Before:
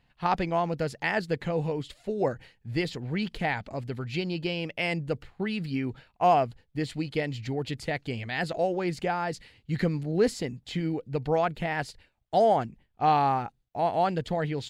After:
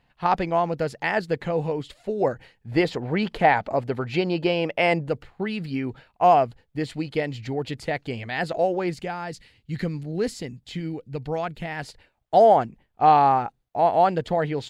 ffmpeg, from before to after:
-af "asetnsamples=n=441:p=0,asendcmd='2.72 equalizer g 13.5;5.09 equalizer g 5;8.94 equalizer g -3;11.83 equalizer g 7',equalizer=f=730:t=o:w=2.8:g=5"

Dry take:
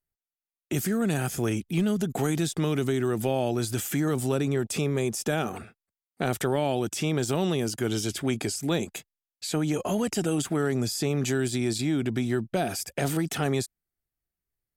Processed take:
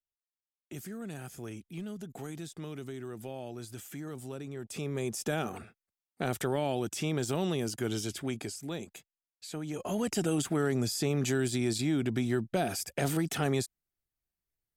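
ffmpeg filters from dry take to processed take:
-af "volume=3.5dB,afade=t=in:st=4.55:d=0.65:silence=0.316228,afade=t=out:st=7.87:d=0.85:silence=0.473151,afade=t=in:st=9.68:d=0.45:silence=0.375837"

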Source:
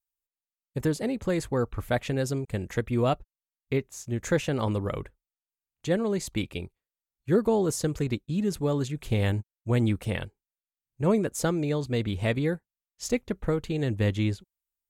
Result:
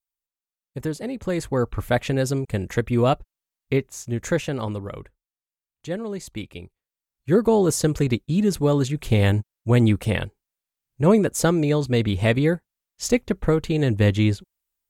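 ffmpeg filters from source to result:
-af "volume=15.5dB,afade=t=in:st=1.08:d=0.66:silence=0.473151,afade=t=out:st=3.87:d=1:silence=0.375837,afade=t=in:st=6.62:d=1.11:silence=0.316228"

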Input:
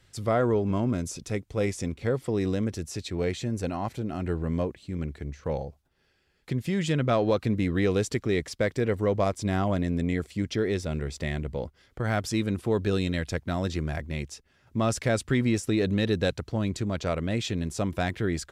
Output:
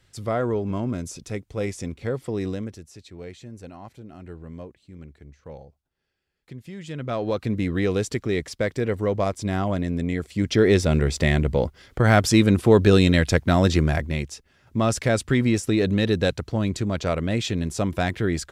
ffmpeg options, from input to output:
-af "volume=20.5dB,afade=t=out:st=2.45:d=0.4:silence=0.316228,afade=t=in:st=6.84:d=0.74:silence=0.251189,afade=t=in:st=10.27:d=0.44:silence=0.354813,afade=t=out:st=13.78:d=0.49:silence=0.473151"

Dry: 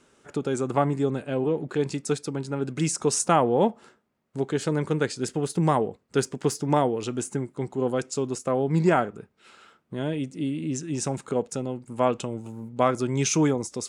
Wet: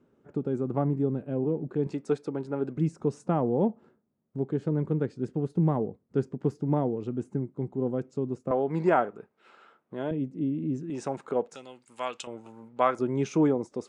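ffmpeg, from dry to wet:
-af "asetnsamples=n=441:p=0,asendcmd='1.87 bandpass f 470;2.77 bandpass f 170;8.51 bandpass f 710;10.11 bandpass f 220;10.9 bandpass f 730;11.55 bandpass f 3700;12.27 bandpass f 1200;12.99 bandpass f 410',bandpass=f=180:t=q:w=0.62:csg=0"

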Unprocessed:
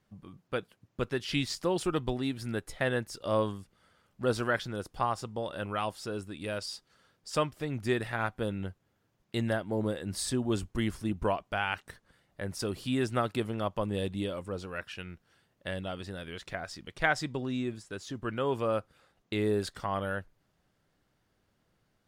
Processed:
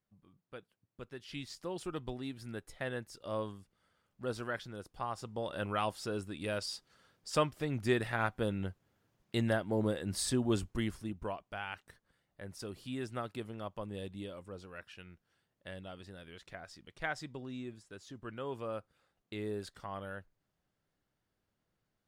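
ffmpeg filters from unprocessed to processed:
-af "volume=-1dB,afade=t=in:st=1.06:d=1.02:silence=0.473151,afade=t=in:st=5.05:d=0.55:silence=0.398107,afade=t=out:st=10.51:d=0.67:silence=0.354813"

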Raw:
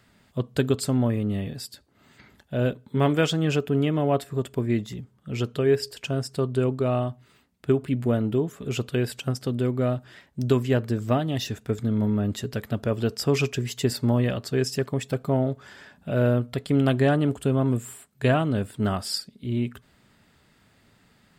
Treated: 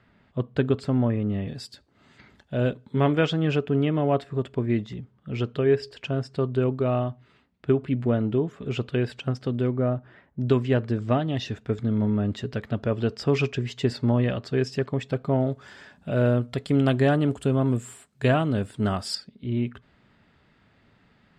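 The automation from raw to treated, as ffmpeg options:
-af "asetnsamples=n=441:p=0,asendcmd='1.48 lowpass f 5900;3 lowpass f 3500;9.77 lowpass f 1600;10.47 lowpass f 3900;15.41 lowpass f 8200;19.15 lowpass f 3300',lowpass=2.6k"

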